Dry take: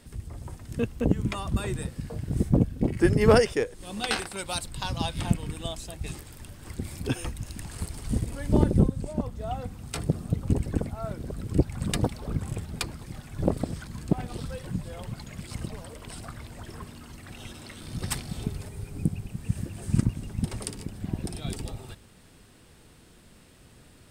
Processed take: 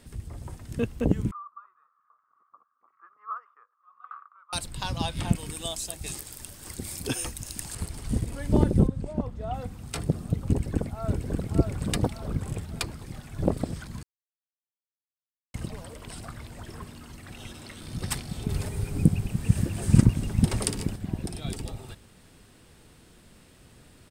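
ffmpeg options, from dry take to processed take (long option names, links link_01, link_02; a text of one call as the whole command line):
ffmpeg -i in.wav -filter_complex "[0:a]asettb=1/sr,asplit=3[link_01][link_02][link_03];[link_01]atrim=end=1.314[link_04];[link_02]atrim=start=1.31:end=4.53,asetpts=PTS-STARTPTS,afade=type=in:duration=0.004:curve=qsin,afade=type=out:start_time=3.216:duration=0.004:curve=qsin,asuperpass=centerf=1200:order=4:qfactor=6.9[link_05];[link_03]atrim=start=4.526[link_06];[link_04][link_05]acrossfade=duration=0.004:curve1=hsin:curve2=qsin[link_07];[link_07][link_06]acrossfade=duration=0.004:curve1=qsin:curve2=hsin,asettb=1/sr,asplit=3[link_08][link_09][link_10];[link_08]atrim=end=5.354[link_11];[link_09]atrim=start=5.35:end=7.75,asetpts=PTS-STARTPTS,afade=type=in:duration=0.004:curve=qsin,afade=type=out:start_time=2.396:duration=0.004:curve=qsin,bass=frequency=250:gain=-5,treble=frequency=4000:gain=10[link_12];[link_10]atrim=start=7.746[link_13];[link_11][link_12]acrossfade=duration=0.004:curve1=hsin:curve2=qsin[link_14];[link_14][link_13]acrossfade=duration=0.004:curve1=qsin:curve2=hsin,asettb=1/sr,asplit=3[link_15][link_16][link_17];[link_15]atrim=end=8.874[link_18];[link_16]atrim=start=8.87:end=9.54,asetpts=PTS-STARTPTS,afade=type=in:duration=0.004:curve=qsin,afade=type=out:start_time=0.666:duration=0.004:curve=qsin,lowpass=frequency=2800:poles=1[link_19];[link_17]atrim=start=9.536[link_20];[link_18][link_19]acrossfade=duration=0.004:curve1=hsin:curve2=qsin[link_21];[link_21][link_20]acrossfade=duration=0.004:curve1=qsin:curve2=hsin,asplit=2[link_22][link_23];[link_23]afade=type=in:start_time=10.5:duration=0.01,afade=type=out:start_time=11.32:duration=0.01,aecho=0:1:580|1160|1740|2320|2900:0.668344|0.267338|0.106935|0.042774|0.0171096[link_24];[link_22][link_24]amix=inputs=2:normalize=0,asettb=1/sr,asplit=3[link_25][link_26][link_27];[link_25]atrim=end=18.494[link_28];[link_26]atrim=start=18.49:end=20.96,asetpts=PTS-STARTPTS,afade=type=in:duration=0.004:curve=qsin,afade=type=out:start_time=2.466:duration=0.004:curve=qsin,acontrast=88[link_29];[link_27]atrim=start=20.956[link_30];[link_28][link_29]acrossfade=duration=0.004:curve1=hsin:curve2=qsin[link_31];[link_31][link_30]acrossfade=duration=0.004:curve1=qsin:curve2=hsin,asplit=3[link_32][link_33][link_34];[link_32]atrim=end=14.03,asetpts=PTS-STARTPTS,afade=type=out:start_time=14.026:duration=0.004:curve=hsin[link_35];[link_33]atrim=start=14.03:end=15.54,asetpts=PTS-STARTPTS,volume=0[link_36];[link_34]atrim=start=15.54,asetpts=PTS-STARTPTS,afade=type=in:duration=0.004:curve=hsin[link_37];[link_35][link_36][link_37]concat=n=3:v=0:a=1" out.wav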